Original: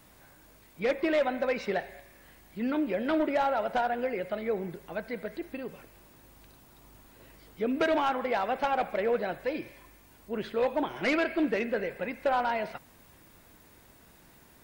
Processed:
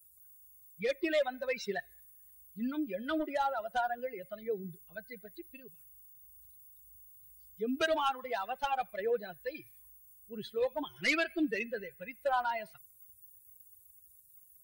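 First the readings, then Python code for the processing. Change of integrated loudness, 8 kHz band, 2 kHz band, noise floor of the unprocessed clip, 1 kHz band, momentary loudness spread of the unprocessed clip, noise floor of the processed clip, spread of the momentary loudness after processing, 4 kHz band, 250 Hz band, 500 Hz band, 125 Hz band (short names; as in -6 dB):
-4.5 dB, n/a, -3.0 dB, -58 dBFS, -4.5 dB, 12 LU, -61 dBFS, 23 LU, 0.0 dB, -6.5 dB, -6.0 dB, -7.5 dB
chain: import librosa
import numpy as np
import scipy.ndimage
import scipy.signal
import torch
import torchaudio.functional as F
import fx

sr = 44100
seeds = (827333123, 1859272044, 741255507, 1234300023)

y = fx.bin_expand(x, sr, power=2.0)
y = fx.high_shelf(y, sr, hz=2400.0, db=11.5)
y = y * librosa.db_to_amplitude(-2.0)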